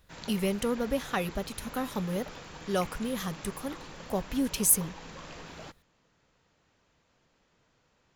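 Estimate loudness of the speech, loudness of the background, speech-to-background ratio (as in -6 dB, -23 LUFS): -30.5 LUFS, -45.0 LUFS, 14.5 dB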